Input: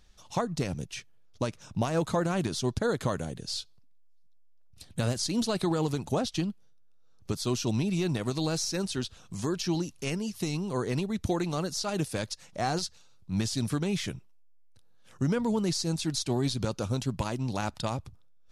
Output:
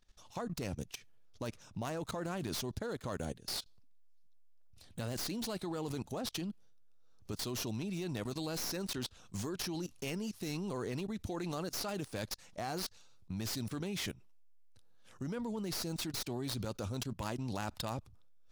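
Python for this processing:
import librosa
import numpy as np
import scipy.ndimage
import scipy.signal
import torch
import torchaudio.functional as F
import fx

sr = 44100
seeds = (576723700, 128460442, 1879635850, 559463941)

y = fx.tracing_dist(x, sr, depth_ms=0.093)
y = fx.peak_eq(y, sr, hz=150.0, db=-5.0, octaves=0.45)
y = fx.level_steps(y, sr, step_db=19)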